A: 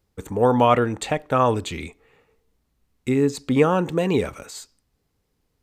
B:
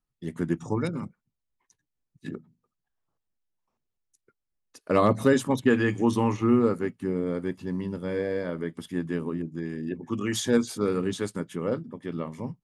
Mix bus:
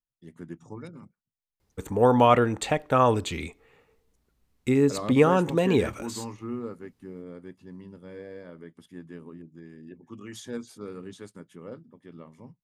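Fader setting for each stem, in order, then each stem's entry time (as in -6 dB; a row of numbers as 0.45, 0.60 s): -1.5, -13.0 dB; 1.60, 0.00 s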